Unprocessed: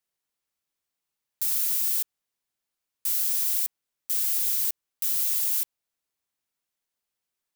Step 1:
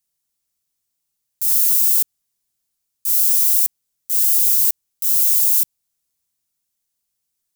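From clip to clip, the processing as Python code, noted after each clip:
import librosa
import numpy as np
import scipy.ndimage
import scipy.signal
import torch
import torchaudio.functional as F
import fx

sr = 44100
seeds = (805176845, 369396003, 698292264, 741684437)

y = fx.bass_treble(x, sr, bass_db=10, treble_db=12)
y = fx.transient(y, sr, attack_db=-6, sustain_db=1)
y = F.gain(torch.from_numpy(y), -1.5).numpy()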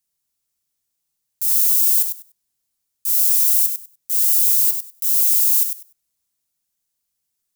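y = fx.echo_feedback(x, sr, ms=98, feedback_pct=17, wet_db=-7.5)
y = F.gain(torch.from_numpy(y), -1.0).numpy()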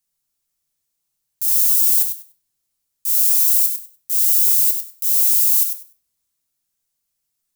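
y = fx.room_shoebox(x, sr, seeds[0], volume_m3=55.0, walls='mixed', distance_m=0.34)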